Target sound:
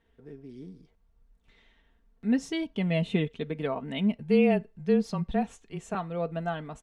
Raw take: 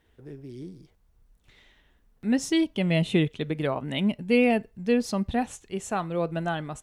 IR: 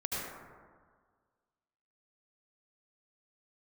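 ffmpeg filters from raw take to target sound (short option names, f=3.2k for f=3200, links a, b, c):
-filter_complex "[0:a]asettb=1/sr,asplit=3[a][b][c];[a]atrim=end=4.184[d];[b]atrim=start=4.18:end=5.95,asetpts=PTS-STARTPTS,afade=t=in:d=0.004:c=qsin,afade=t=out:st=1.766:d=0.004:c=qsin,afreqshift=-27[e];[c]atrim=start=5.946[f];[d][e]acrossfade=d=0.004:c1=hsin:c2=qsin[g];[g][f]acrossfade=d=0.004:c1=qsin:c2=hsin,aemphasis=mode=reproduction:type=50kf,aecho=1:1:4.4:0.51,volume=-4dB"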